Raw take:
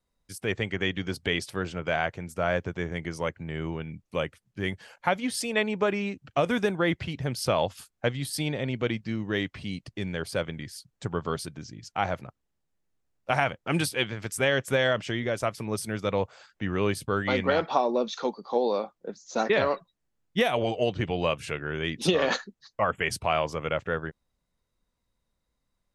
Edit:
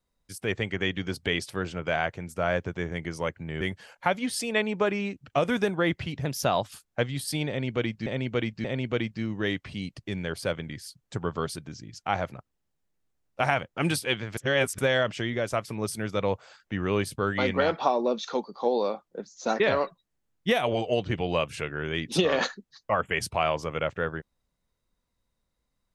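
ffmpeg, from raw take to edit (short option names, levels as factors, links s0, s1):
-filter_complex "[0:a]asplit=8[s0][s1][s2][s3][s4][s5][s6][s7];[s0]atrim=end=3.612[s8];[s1]atrim=start=4.618:end=7.264[s9];[s2]atrim=start=7.26:end=7.73,asetpts=PTS-STARTPTS,asetrate=48951,aresample=44100[s10];[s3]atrim=start=7.726:end=9.122[s11];[s4]atrim=start=8.538:end=9.122[s12];[s5]atrim=start=8.538:end=14.272[s13];[s6]atrim=start=14.268:end=14.682,asetpts=PTS-STARTPTS,areverse[s14];[s7]atrim=start=14.678[s15];[s8][s9]acrossfade=d=0.004:c1=hsin:c2=hsin[s16];[s16][s10]acrossfade=d=0.004:c1=hsin:c2=hsin[s17];[s17][s11]acrossfade=d=0.004:c1=hsin:c2=hsin[s18];[s18][s12]acrossfade=d=0.004:c1=hsin:c2=hsin[s19];[s19][s13]acrossfade=d=0.004:c1=hsin:c2=hsin[s20];[s20][s14]acrossfade=d=0.004:c1=hsin:c2=hsin[s21];[s21][s15]acrossfade=d=0.004:c1=hsin:c2=hsin"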